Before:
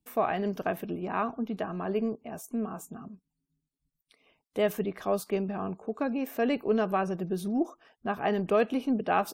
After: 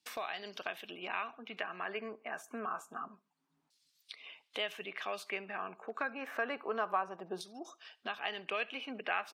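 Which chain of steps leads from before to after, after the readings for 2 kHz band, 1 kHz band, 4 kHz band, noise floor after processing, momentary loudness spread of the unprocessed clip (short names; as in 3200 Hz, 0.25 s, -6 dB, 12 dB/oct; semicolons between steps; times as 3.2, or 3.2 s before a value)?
+0.5 dB, -6.5 dB, +3.0 dB, -80 dBFS, 10 LU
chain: low shelf 130 Hz -8 dB; LFO band-pass saw down 0.27 Hz 870–4900 Hz; wow and flutter 24 cents; feedback echo 68 ms, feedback 32%, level -24 dB; three-band squash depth 70%; gain +7 dB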